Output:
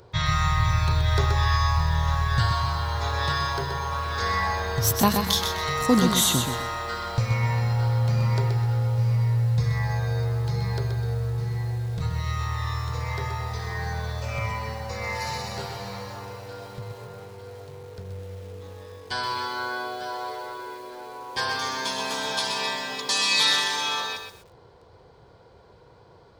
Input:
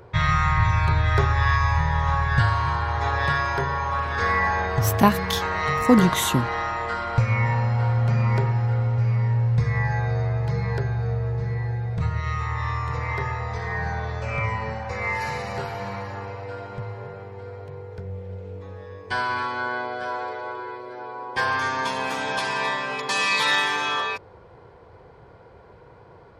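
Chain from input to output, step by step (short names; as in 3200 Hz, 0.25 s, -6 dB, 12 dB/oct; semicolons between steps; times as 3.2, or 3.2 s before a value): resonant high shelf 3000 Hz +8 dB, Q 1.5; lo-fi delay 0.127 s, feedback 35%, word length 7-bit, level -6 dB; gain -4 dB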